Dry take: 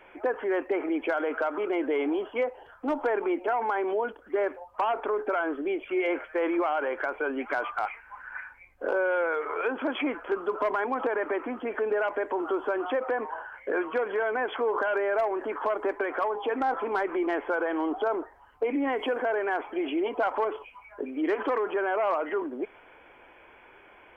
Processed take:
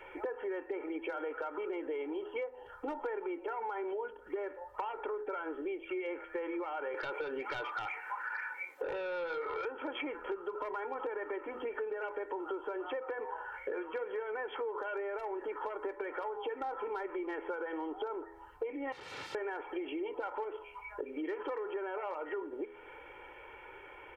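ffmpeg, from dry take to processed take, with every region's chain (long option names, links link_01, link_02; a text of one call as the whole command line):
ffmpeg -i in.wav -filter_complex "[0:a]asettb=1/sr,asplit=3[link_01][link_02][link_03];[link_01]atrim=end=6.944[link_04];[link_02]atrim=start=6.94:end=9.65,asetpts=PTS-STARTPTS,afade=type=in:duration=0.004:curve=qsin,afade=type=out:start_time=2.706:duration=0.004:curve=qsin,highpass=frequency=260:width=0.5412,highpass=frequency=260:width=1.3066,aeval=exprs='0.168*sin(PI/2*2.24*val(0)/0.168)':channel_layout=same,acompressor=threshold=-25dB:ratio=6:attack=3.2:release=140:knee=1:detection=peak[link_05];[link_03]atrim=start=9.646[link_06];[link_04][link_05]acrossfade=duration=0.004:curve1=hsin:curve2=qsin[link_07];[link_07][link_06]acrossfade=duration=0.004:curve1=qsin:curve2=hsin,asettb=1/sr,asplit=3[link_08][link_09][link_10];[link_08]atrim=end=18.924[link_11];[link_09]atrim=start=18.92:end=19.35,asetpts=PTS-STARTPTS,afade=type=in:duration=0.004:curve=qsin,afade=type=out:start_time=0.426:duration=0.004:curve=qsin,highshelf=frequency=2200:gain=-8.5,aeval=exprs='(mod(66.8*val(0)+1,2)-1)/66.8':channel_layout=same,highpass=100,lowpass=3000[link_12];[link_10]atrim=start=19.346[link_13];[link_11][link_12]acrossfade=duration=0.004:curve1=hsin:curve2=qsin[link_14];[link_14][link_13]acrossfade=duration=0.004:curve1=qsin:curve2=hsin,aecho=1:1:2.2:0.73,bandreject=frequency=82.95:width_type=h:width=4,bandreject=frequency=165.9:width_type=h:width=4,bandreject=frequency=248.85:width_type=h:width=4,bandreject=frequency=331.8:width_type=h:width=4,bandreject=frequency=414.75:width_type=h:width=4,bandreject=frequency=497.7:width_type=h:width=4,bandreject=frequency=580.65:width_type=h:width=4,bandreject=frequency=663.6:width_type=h:width=4,bandreject=frequency=746.55:width_type=h:width=4,bandreject=frequency=829.5:width_type=h:width=4,bandreject=frequency=912.45:width_type=h:width=4,bandreject=frequency=995.4:width_type=h:width=4,bandreject=frequency=1078.35:width_type=h:width=4,bandreject=frequency=1161.3:width_type=h:width=4,bandreject=frequency=1244.25:width_type=h:width=4,bandreject=frequency=1327.2:width_type=h:width=4,bandreject=frequency=1410.15:width_type=h:width=4,bandreject=frequency=1493.1:width_type=h:width=4,bandreject=frequency=1576.05:width_type=h:width=4,bandreject=frequency=1659:width_type=h:width=4,bandreject=frequency=1741.95:width_type=h:width=4,bandreject=frequency=1824.9:width_type=h:width=4,bandreject=frequency=1907.85:width_type=h:width=4,bandreject=frequency=1990.8:width_type=h:width=4,bandreject=frequency=2073.75:width_type=h:width=4,acompressor=threshold=-37dB:ratio=5" out.wav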